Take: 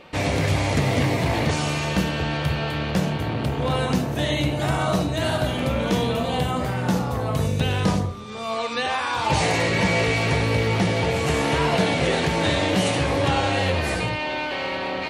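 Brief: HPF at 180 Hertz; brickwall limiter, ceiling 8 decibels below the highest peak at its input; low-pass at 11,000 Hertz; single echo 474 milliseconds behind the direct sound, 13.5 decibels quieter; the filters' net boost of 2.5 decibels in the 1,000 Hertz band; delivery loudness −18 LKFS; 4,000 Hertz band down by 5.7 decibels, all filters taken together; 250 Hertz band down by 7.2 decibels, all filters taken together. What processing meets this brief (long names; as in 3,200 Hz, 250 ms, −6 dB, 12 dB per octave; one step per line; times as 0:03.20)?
high-pass filter 180 Hz
low-pass filter 11,000 Hz
parametric band 250 Hz −8 dB
parametric band 1,000 Hz +4 dB
parametric band 4,000 Hz −8 dB
brickwall limiter −17.5 dBFS
single-tap delay 474 ms −13.5 dB
level +9 dB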